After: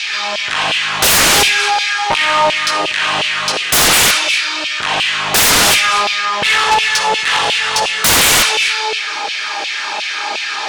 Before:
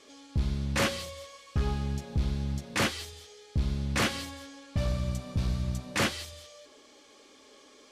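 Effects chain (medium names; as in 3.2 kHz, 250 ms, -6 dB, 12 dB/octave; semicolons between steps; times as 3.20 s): speed mistake 45 rpm record played at 33 rpm; on a send at -10.5 dB: reverberation RT60 0.50 s, pre-delay 38 ms; on the sum: compression, threshold -27 dBFS, peak gain reduction 5 dB; LFO high-pass saw down 2.8 Hz 650–2800 Hz; in parallel at -1.5 dB: level held to a coarse grid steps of 20 dB; on the sum: sine folder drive 20 dB, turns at -14.5 dBFS; trim +7.5 dB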